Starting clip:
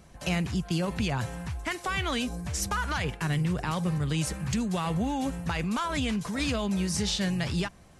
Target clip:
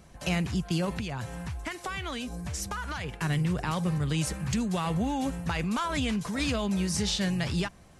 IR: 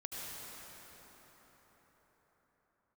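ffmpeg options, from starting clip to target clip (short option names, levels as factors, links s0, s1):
-filter_complex "[0:a]asettb=1/sr,asplit=3[s0][s1][s2];[s0]atrim=end=0.984[s3];[s1]atrim=start=0.98:end=3.14,asetpts=PTS-STARTPTS,afade=t=in:d=0.004:c=qsin,afade=t=out:st=2.156:d=0.004:c=qsin,acompressor=threshold=0.0282:ratio=6[s4];[s2]atrim=start=3.136[s5];[s3][s4]acrossfade=d=0.004:c1=hsin:c2=qsin[s6];[s6][s5]acrossfade=d=0.004:c1=qsin:c2=hsin"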